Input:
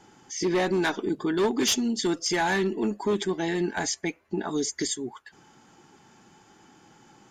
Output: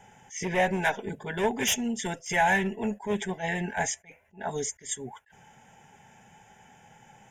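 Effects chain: fixed phaser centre 1200 Hz, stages 6; attack slew limiter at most 230 dB/s; gain +4.5 dB

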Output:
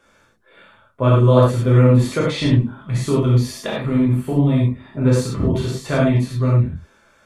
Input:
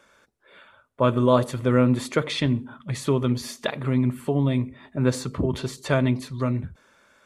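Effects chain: low shelf 160 Hz +10.5 dB; non-linear reverb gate 0.13 s flat, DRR -5.5 dB; gain -3.5 dB

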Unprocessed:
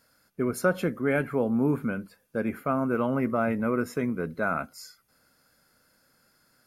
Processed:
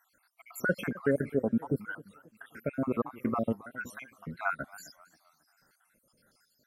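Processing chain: random spectral dropouts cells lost 70%; warbling echo 0.266 s, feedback 38%, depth 195 cents, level -19.5 dB

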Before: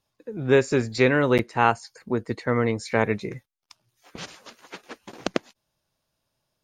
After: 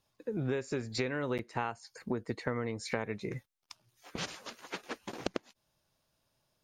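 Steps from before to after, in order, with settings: compressor 20:1, threshold -30 dBFS, peak gain reduction 18.5 dB

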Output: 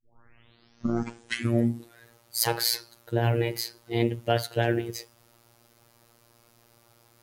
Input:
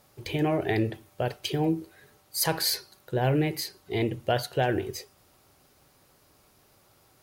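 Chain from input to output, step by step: tape start at the beginning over 2.05 s; robotiser 117 Hz; gain +3 dB

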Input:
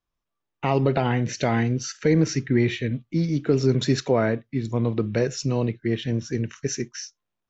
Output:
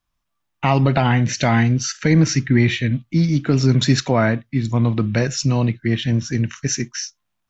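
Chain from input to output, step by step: bell 430 Hz -11.5 dB 0.75 oct; gain +8 dB

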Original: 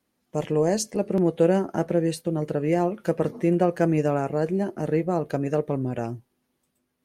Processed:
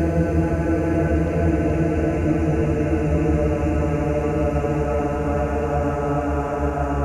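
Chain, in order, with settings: octaver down 1 oct, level 0 dB; Paulstretch 23×, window 0.50 s, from 3.86; delay with a stepping band-pass 0.425 s, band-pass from 1100 Hz, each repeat 0.7 oct, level 0 dB

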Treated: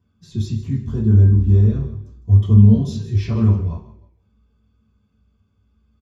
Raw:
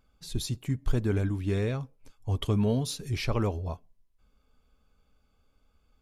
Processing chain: 0.79–2.71 bell 2200 Hz -12 dB 0.99 oct; frequency-shifting echo 0.155 s, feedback 30%, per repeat -38 Hz, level -14 dB; reverb RT60 0.45 s, pre-delay 3 ms, DRR -9.5 dB; gain -14.5 dB

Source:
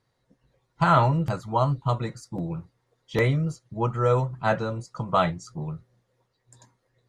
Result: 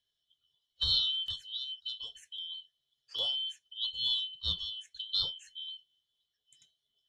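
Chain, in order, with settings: four-band scrambler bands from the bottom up 2413; EQ curve 110 Hz 0 dB, 250 Hz -13 dB, 5200 Hz -2 dB; 1.42–3.19 compressor 6:1, threshold -29 dBFS, peak gain reduction 8 dB; gain -7 dB

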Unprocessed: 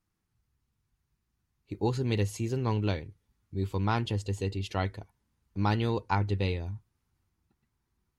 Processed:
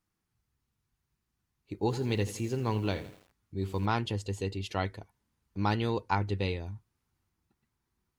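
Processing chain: low shelf 130 Hz -5.5 dB; 1.74–3.86 lo-fi delay 83 ms, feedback 55%, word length 8-bit, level -13.5 dB

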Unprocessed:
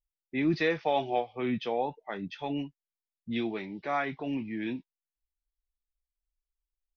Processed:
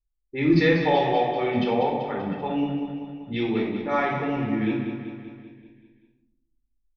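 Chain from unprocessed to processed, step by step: low-pass opened by the level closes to 360 Hz, open at -26 dBFS; feedback echo 0.193 s, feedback 58%, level -8.5 dB; shoebox room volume 1900 m³, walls furnished, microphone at 4.3 m; gain +2 dB

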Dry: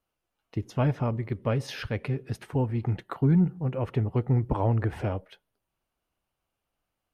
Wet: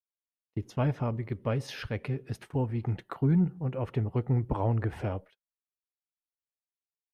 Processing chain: gate -44 dBFS, range -32 dB; gain -3 dB

